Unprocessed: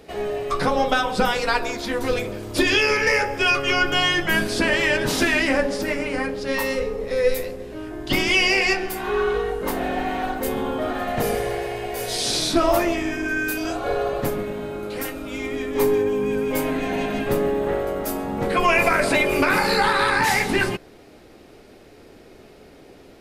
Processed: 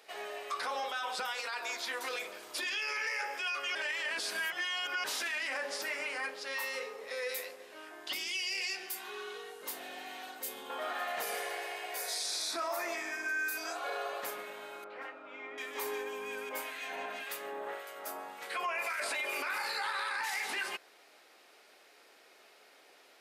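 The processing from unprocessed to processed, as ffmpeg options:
-filter_complex "[0:a]asettb=1/sr,asplit=3[a][b][c];[a]atrim=end=8.134[d];[b]atrim=start=8.13:end=10.7,asetpts=PTS-STARTPTS,afade=t=in:d=0.004:c=qsin,afade=t=out:st=2.566:d=0.004:c=qsin,acrossover=split=420|3000[e][f][g];[f]acompressor=threshold=-48dB:ratio=2:attack=3.2:release=140:knee=2.83:detection=peak[h];[e][h][g]amix=inputs=3:normalize=0[i];[c]atrim=start=10.696[j];[d][i]acrossfade=d=0.004:c1=hsin:c2=qsin[k];[k][j]acrossfade=d=0.004:c1=qsin:c2=hsin,asettb=1/sr,asplit=3[l][m][n];[l]atrim=end=11.974[o];[m]atrim=start=11.97:end=13.76,asetpts=PTS-STARTPTS,afade=t=in:d=0.004:c=qsin,afade=t=out:st=1.786:d=0.004:c=qsin,equalizer=f=3k:t=o:w=0.32:g=-13[p];[n]atrim=start=13.756[q];[o][p]acrossfade=d=0.004:c1=hsin:c2=qsin[r];[r][q]acrossfade=d=0.004:c1=qsin:c2=hsin,asettb=1/sr,asplit=3[s][t][u];[s]atrim=end=14.844[v];[t]atrim=start=14.84:end=15.58,asetpts=PTS-STARTPTS,afade=t=in:d=0.004:c=qsin,afade=t=out:st=0.736:d=0.004:c=qsin,lowpass=1.5k[w];[u]atrim=start=15.576[x];[v][w]acrossfade=d=0.004:c1=hsin:c2=qsin[y];[y][x]acrossfade=d=0.004:c1=qsin:c2=hsin,asettb=1/sr,asplit=3[z][aa][ab];[z]atrim=end=16.494[ac];[aa]atrim=start=16.49:end=19,asetpts=PTS-STARTPTS,afade=t=in:d=0.004:c=qsin,afade=t=out:st=2.506:d=0.004:c=qsin,acrossover=split=1700[ad][ae];[ad]aeval=exprs='val(0)*(1-0.7/2+0.7/2*cos(2*PI*1.8*n/s))':c=same[af];[ae]aeval=exprs='val(0)*(1-0.7/2-0.7/2*cos(2*PI*1.8*n/s))':c=same[ag];[af][ag]amix=inputs=2:normalize=0[ah];[ab]atrim=start=18.996[ai];[ac][ah]acrossfade=d=0.004:c1=hsin:c2=qsin[aj];[aj][ai]acrossfade=d=0.004:c1=qsin:c2=hsin,asplit=3[ak][al][am];[ak]atrim=end=3.752[an];[al]atrim=start=3.748:end=5.042,asetpts=PTS-STARTPTS,areverse[ao];[am]atrim=start=5.038[ap];[an][ao]acrossfade=d=0.004:c1=hsin:c2=hsin[aq];[aq][ap]acrossfade=d=0.004:c1=hsin:c2=hsin,highpass=950,acompressor=threshold=-23dB:ratio=3,alimiter=limit=-22dB:level=0:latency=1:release=25,volume=-5dB"

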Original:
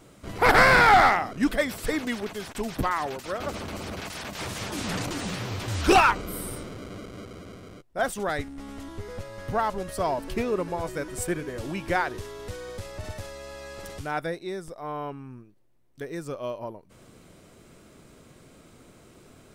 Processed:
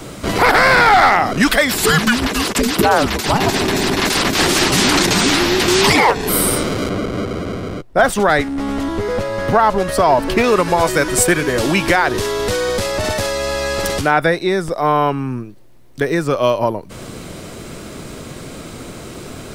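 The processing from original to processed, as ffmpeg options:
-filter_complex "[0:a]asettb=1/sr,asplit=3[a][b][c];[a]atrim=end=1.724[d];[b]atrim=start=1.72:end=6.29,asetpts=PTS-STARTPTS,afade=t=in:d=0.004:c=qsin,afade=t=out:st=4.566:d=0.004:c=qsin,afreqshift=-470[e];[c]atrim=start=6.286[f];[d][e]acrossfade=d=0.004:c1=hsin:c2=qsin[g];[g][f]acrossfade=d=0.004:c1=qsin:c2=hsin,asettb=1/sr,asplit=3[h][i][j];[h]atrim=end=6.894[k];[i]atrim=start=6.89:end=10.44,asetpts=PTS-STARTPTS,afade=t=in:d=0.004:c=qsin,afade=t=out:st=3.546:d=0.004:c=qsin,highshelf=f=2.9k:g=-9[l];[j]atrim=start=10.436[m];[k][l]acrossfade=d=0.004:c1=hsin:c2=qsin[n];[n][m]acrossfade=d=0.004:c1=qsin:c2=hsin,asettb=1/sr,asplit=3[o][p][q];[o]atrim=end=14.014[r];[p]atrim=start=14.01:end=16.39,asetpts=PTS-STARTPTS,afade=t=in:d=0.004:c=qsin,afade=t=out:st=2.376:d=0.004:c=qsin,acrossover=split=3100[s][t];[t]acompressor=threshold=-54dB:ratio=4:attack=1:release=60[u];[s][u]amix=inputs=2:normalize=0[v];[q]atrim=start=16.386[w];[r][v]acrossfade=d=0.004:c1=hsin:c2=qsin[x];[x][w]acrossfade=d=0.004:c1=qsin:c2=hsin,equalizer=f=4.4k:t=o:w=0.77:g=2.5,acrossover=split=170|750[y][z][aa];[y]acompressor=threshold=-47dB:ratio=4[ab];[z]acompressor=threshold=-37dB:ratio=4[ac];[aa]acompressor=threshold=-31dB:ratio=4[ad];[ab][ac][ad]amix=inputs=3:normalize=0,alimiter=level_in=22dB:limit=-1dB:release=50:level=0:latency=1,volume=-1.5dB"

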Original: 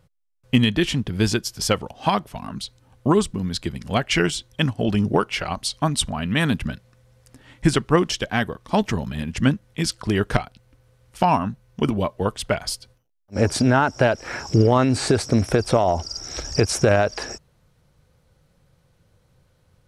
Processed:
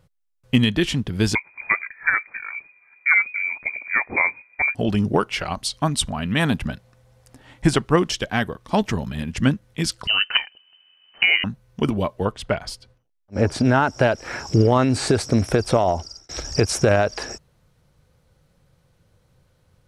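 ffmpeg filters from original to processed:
-filter_complex "[0:a]asettb=1/sr,asplit=3[a][b][c];[a]atrim=end=1.354[d];[b]atrim=start=1.35:end=4.75,asetpts=PTS-STARTPTS,afade=t=in:d=0.004:c=qsin,afade=t=out:st=3.396:d=0.004:c=qsin,lowpass=f=2.1k:t=q:w=0.5098,lowpass=f=2.1k:t=q:w=0.6013,lowpass=f=2.1k:t=q:w=0.9,lowpass=f=2.1k:t=q:w=2.563,afreqshift=-2500[e];[c]atrim=start=4.746[f];[d][e]acrossfade=d=0.004:c1=hsin:c2=qsin[g];[g][f]acrossfade=d=0.004:c1=qsin:c2=hsin,asettb=1/sr,asplit=3[h][i][j];[h]atrim=end=6.394[k];[i]atrim=start=6.39:end=7.86,asetpts=PTS-STARTPTS,afade=t=in:d=0.004:c=qsin,afade=t=out:st=1.466:d=0.004:c=qsin,equalizer=f=760:t=o:w=0.77:g=6[l];[j]atrim=start=7.856[m];[k][l]acrossfade=d=0.004:c1=hsin:c2=qsin[n];[n][m]acrossfade=d=0.004:c1=qsin:c2=hsin,asettb=1/sr,asplit=3[o][p][q];[o]atrim=end=10.074[r];[p]atrim=start=10.07:end=11.44,asetpts=PTS-STARTPTS,afade=t=in:d=0.004:c=qsin,afade=t=out:st=1.366:d=0.004:c=qsin,lowpass=f=2.6k:t=q:w=0.5098,lowpass=f=2.6k:t=q:w=0.6013,lowpass=f=2.6k:t=q:w=0.9,lowpass=f=2.6k:t=q:w=2.563,afreqshift=-3100[s];[q]atrim=start=11.436[t];[r][s]acrossfade=d=0.004:c1=hsin:c2=qsin[u];[u][t]acrossfade=d=0.004:c1=qsin:c2=hsin,asettb=1/sr,asplit=3[v][w][x];[v]atrim=end=12.254[y];[w]atrim=start=12.25:end=13.65,asetpts=PTS-STARTPTS,afade=t=in:d=0.004:c=qsin,afade=t=out:st=1.396:d=0.004:c=qsin,lowpass=f=3.1k:p=1[z];[x]atrim=start=13.646[aa];[y][z]acrossfade=d=0.004:c1=hsin:c2=qsin[ab];[ab][aa]acrossfade=d=0.004:c1=qsin:c2=hsin,asplit=2[ac][ad];[ac]atrim=end=16.29,asetpts=PTS-STARTPTS,afade=t=out:st=15.89:d=0.4[ae];[ad]atrim=start=16.29,asetpts=PTS-STARTPTS,afade=t=in:d=0.004:c=hsin[af];[ae][af]concat=n=2:v=0:a=1"

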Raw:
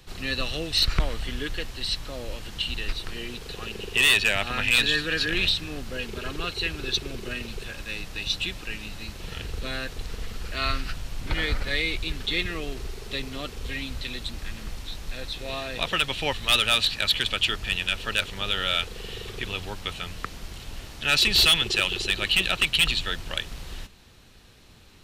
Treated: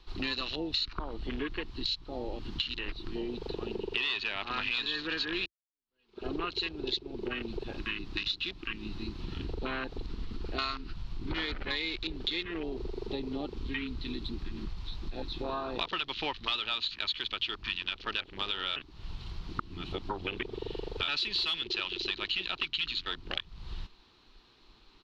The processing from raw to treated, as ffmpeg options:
-filter_complex "[0:a]asplit=4[a][b][c][d];[a]atrim=end=5.46,asetpts=PTS-STARTPTS,afade=t=out:st=5.456:d=0.004:c=hsin[e];[b]atrim=start=5.46:end=18.762,asetpts=PTS-STARTPTS,afade=t=in:d=0.83:c=exp[f];[c]atrim=start=18.758:end=21.082,asetpts=PTS-STARTPTS,areverse[g];[d]atrim=start=21.078[h];[e][f]concat=n=2:v=0:a=1[i];[i][g]acrossfade=d=0.004:c1=hsin:c2=hsin[j];[j][h]acrossfade=d=0.004:c1=hsin:c2=hsin,afwtdn=0.0224,firequalizer=gain_entry='entry(130,0);entry(340,13);entry(540,3);entry(990,15);entry(1700,6);entry(4200,13);entry(6000,1);entry(8600,-11)':delay=0.05:min_phase=1,acompressor=threshold=-32dB:ratio=6"

